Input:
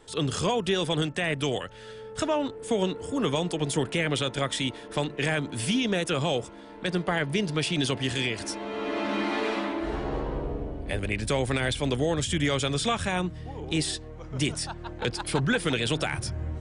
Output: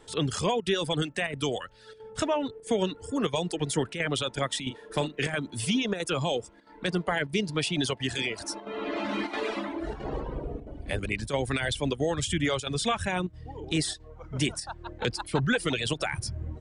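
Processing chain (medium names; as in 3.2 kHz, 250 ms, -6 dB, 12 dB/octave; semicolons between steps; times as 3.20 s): reverb removal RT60 1.2 s; 4.59–5.35 s: doubling 39 ms -11 dB; square tremolo 1.5 Hz, depth 60%, duty 90%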